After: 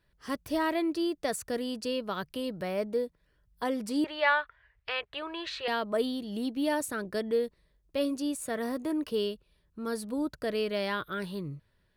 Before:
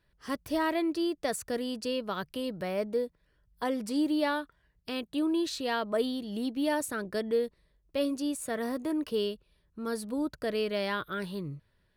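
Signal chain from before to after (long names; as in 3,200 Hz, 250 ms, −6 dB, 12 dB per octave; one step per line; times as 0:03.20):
0:04.04–0:05.68: drawn EQ curve 110 Hz 0 dB, 250 Hz −28 dB, 410 Hz −2 dB, 2,100 Hz +12 dB, 11,000 Hz −21 dB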